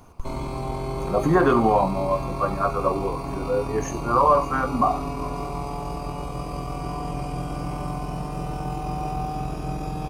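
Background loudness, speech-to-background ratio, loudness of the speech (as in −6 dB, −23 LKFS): −31.0 LKFS, 8.0 dB, −23.0 LKFS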